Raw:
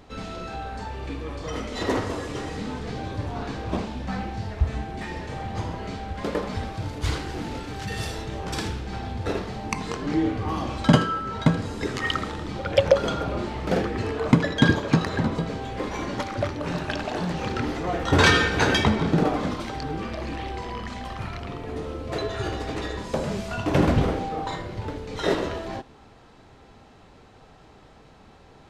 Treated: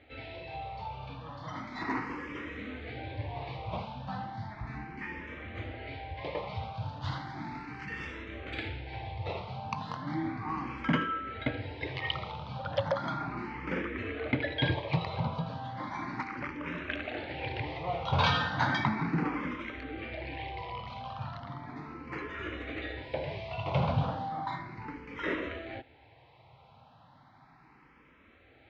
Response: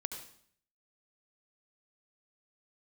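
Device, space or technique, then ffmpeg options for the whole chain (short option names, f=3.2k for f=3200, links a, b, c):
barber-pole phaser into a guitar amplifier: -filter_complex "[0:a]asplit=2[a][b];[b]afreqshift=0.35[c];[a][c]amix=inputs=2:normalize=1,asoftclip=type=tanh:threshold=-12.5dB,highpass=78,equalizer=f=130:t=q:w=4:g=4,equalizer=f=200:t=q:w=4:g=-6,equalizer=f=410:t=q:w=4:g=-8,equalizer=f=940:t=q:w=4:g=4,equalizer=f=2.2k:t=q:w=4:g=8,lowpass=f=4.1k:w=0.5412,lowpass=f=4.1k:w=1.3066,volume=-4.5dB"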